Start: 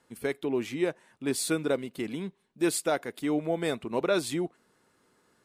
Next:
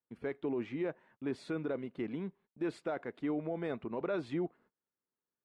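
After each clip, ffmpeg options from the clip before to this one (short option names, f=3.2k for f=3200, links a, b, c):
-af "lowpass=1.9k,agate=range=-26dB:threshold=-57dB:ratio=16:detection=peak,alimiter=limit=-23dB:level=0:latency=1:release=18,volume=-4dB"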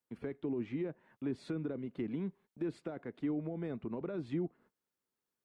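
-filter_complex "[0:a]acrossover=split=320[a][b];[b]acompressor=threshold=-49dB:ratio=5[c];[a][c]amix=inputs=2:normalize=0,volume=3dB"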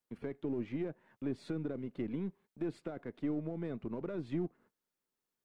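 -af "aeval=exprs='if(lt(val(0),0),0.708*val(0),val(0))':c=same,volume=1dB"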